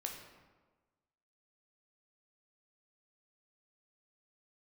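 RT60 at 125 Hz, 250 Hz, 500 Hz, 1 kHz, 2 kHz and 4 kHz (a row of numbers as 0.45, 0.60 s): 1.4, 1.3, 1.4, 1.3, 1.0, 0.80 s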